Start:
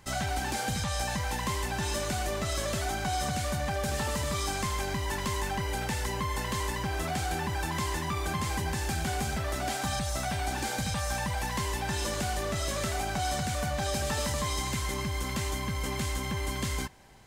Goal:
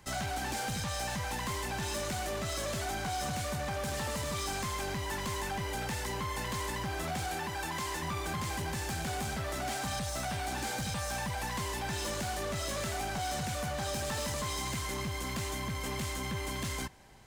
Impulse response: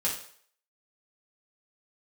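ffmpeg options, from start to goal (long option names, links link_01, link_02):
-filter_complex "[0:a]asettb=1/sr,asplit=3[link_01][link_02][link_03];[link_01]atrim=end=7.284[link_04];[link_02]atrim=start=7.28:end=8.02,asetpts=PTS-STARTPTS,afade=type=in:duration=0.004:curve=qsin,afade=type=out:start_time=0.736:duration=0.004:curve=qsin,lowshelf=frequency=180:gain=-10.5[link_05];[link_03]atrim=start=8.016[link_06];[link_04][link_05]acrossfade=duration=0.004:curve1=hsin:curve2=qsin[link_07];[link_07][link_06]acrossfade=duration=0.004:curve1=qsin:curve2=hsin,acrossover=split=100|3300[link_08][link_09][link_10];[link_08]alimiter=level_in=14dB:limit=-24dB:level=0:latency=1,volume=-14dB[link_11];[link_11][link_09][link_10]amix=inputs=3:normalize=0,asoftclip=type=hard:threshold=-30dB,volume=-1.5dB"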